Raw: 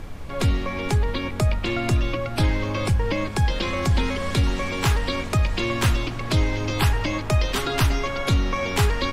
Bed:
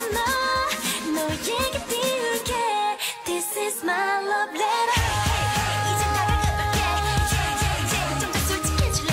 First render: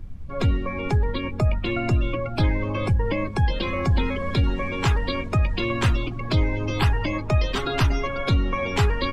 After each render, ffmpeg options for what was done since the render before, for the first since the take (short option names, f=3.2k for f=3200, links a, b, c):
-af "afftdn=nr=18:nf=-30"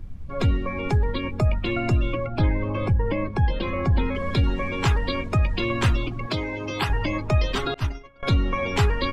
-filter_complex "[0:a]asettb=1/sr,asplit=3[a][b][c];[a]atrim=end=2.264[d];[b]atrim=start=2.26:end=4.15,asetpts=PTS-STARTPTS,afade=t=in:d=0.004:c=qsin,afade=t=out:st=1.886:d=0.004:c=qsin,aemphasis=mode=reproduction:type=75kf[e];[c]atrim=start=4.146[f];[d][e]acrossfade=d=0.004:c1=hsin:c2=qsin[g];[g][f]acrossfade=d=0.004:c1=qsin:c2=hsin,asettb=1/sr,asplit=3[h][i][j];[h]atrim=end=6.264[k];[i]atrim=start=6.26:end=6.9,asetpts=PTS-STARTPTS,afade=t=in:d=0.004:c=qsin,afade=t=out:st=0.636:d=0.004:c=qsin,highpass=f=280:p=1[l];[j]atrim=start=6.896[m];[k][l]acrossfade=d=0.004:c1=hsin:c2=qsin[n];[n][m]acrossfade=d=0.004:c1=qsin:c2=hsin,asettb=1/sr,asplit=3[o][p][q];[o]atrim=end=7.744[r];[p]atrim=start=7.74:end=8.23,asetpts=PTS-STARTPTS,afade=t=in:d=0.004:c=qsin,afade=t=out:st=0.486:d=0.004:c=qsin,agate=range=-33dB:threshold=-13dB:ratio=3:release=100:detection=peak[s];[q]atrim=start=8.226[t];[r][s]acrossfade=d=0.004:c1=hsin:c2=qsin[u];[u][t]acrossfade=d=0.004:c1=qsin:c2=hsin"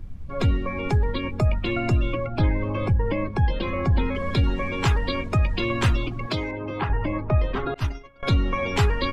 -filter_complex "[0:a]asettb=1/sr,asplit=3[a][b][c];[a]atrim=end=6.514[d];[b]atrim=start=6.51:end=7.76,asetpts=PTS-STARTPTS,afade=t=in:d=0.004:c=qsin,afade=t=out:st=1.246:d=0.004:c=qsin,lowpass=1.7k[e];[c]atrim=start=7.756[f];[d][e]acrossfade=d=0.004:c1=hsin:c2=qsin[g];[g][f]acrossfade=d=0.004:c1=qsin:c2=hsin"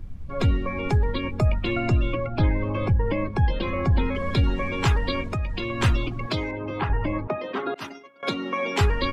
-filter_complex "[0:a]asettb=1/sr,asplit=3[a][b][c];[a]atrim=end=1.884[d];[b]atrim=start=1.88:end=3.09,asetpts=PTS-STARTPTS,afade=t=in:d=0.004:c=qsin,afade=t=out:st=1.206:d=0.004:c=qsin,lowpass=7k[e];[c]atrim=start=3.086[f];[d][e]acrossfade=d=0.004:c1=hsin:c2=qsin[g];[g][f]acrossfade=d=0.004:c1=qsin:c2=hsin,asettb=1/sr,asplit=3[h][i][j];[h]atrim=end=5.304[k];[i]atrim=start=5.3:end=5.8,asetpts=PTS-STARTPTS,afade=t=in:d=0.004:c=qsin,afade=t=out:st=0.496:d=0.004:c=qsin,acompressor=threshold=-26dB:ratio=2.5:attack=3.2:release=140:knee=1:detection=peak[l];[j]atrim=start=5.796[m];[k][l]acrossfade=d=0.004:c1=hsin:c2=qsin[n];[n][m]acrossfade=d=0.004:c1=qsin:c2=hsin,asettb=1/sr,asplit=3[o][p][q];[o]atrim=end=7.274[r];[p]atrim=start=7.27:end=8.81,asetpts=PTS-STARTPTS,afade=t=in:d=0.004:c=qsin,afade=t=out:st=1.536:d=0.004:c=qsin,highpass=f=210:w=0.5412,highpass=f=210:w=1.3066[s];[q]atrim=start=8.806[t];[r][s]acrossfade=d=0.004:c1=hsin:c2=qsin[u];[u][t]acrossfade=d=0.004:c1=qsin:c2=hsin"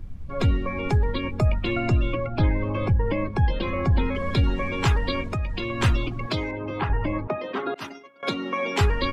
-af anull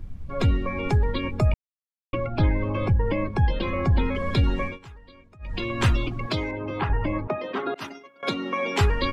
-filter_complex "[0:a]asplit=5[a][b][c][d][e];[a]atrim=end=1.54,asetpts=PTS-STARTPTS,afade=t=out:st=1.536:d=0.004:c=hsin[f];[b]atrim=start=1.54:end=2.13,asetpts=PTS-STARTPTS,volume=0[g];[c]atrim=start=2.13:end=4.79,asetpts=PTS-STARTPTS,afade=t=in:d=0.004:c=hsin,afade=t=out:st=2.5:d=0.16:silence=0.0630957[h];[d]atrim=start=4.79:end=5.39,asetpts=PTS-STARTPTS,volume=-24dB[i];[e]atrim=start=5.39,asetpts=PTS-STARTPTS,afade=t=in:d=0.16:silence=0.0630957[j];[f][g][h][i][j]concat=n=5:v=0:a=1"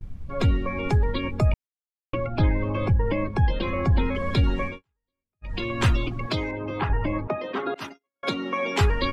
-af "agate=range=-36dB:threshold=-37dB:ratio=16:detection=peak"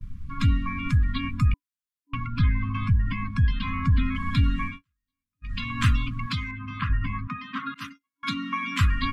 -af "afftfilt=real='re*(1-between(b*sr/4096,290,1000))':imag='im*(1-between(b*sr/4096,290,1000))':win_size=4096:overlap=0.75,adynamicequalizer=threshold=0.00282:dfrequency=5300:dqfactor=1.4:tfrequency=5300:tqfactor=1.4:attack=5:release=100:ratio=0.375:range=4:mode=cutabove:tftype=bell"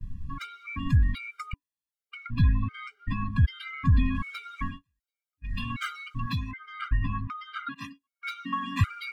-filter_complex "[0:a]acrossover=split=3100[a][b];[b]asoftclip=type=tanh:threshold=-39dB[c];[a][c]amix=inputs=2:normalize=0,afftfilt=real='re*gt(sin(2*PI*1.3*pts/sr)*(1-2*mod(floor(b*sr/1024/400),2)),0)':imag='im*gt(sin(2*PI*1.3*pts/sr)*(1-2*mod(floor(b*sr/1024/400),2)),0)':win_size=1024:overlap=0.75"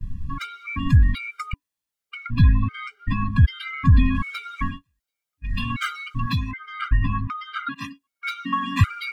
-af "volume=6.5dB"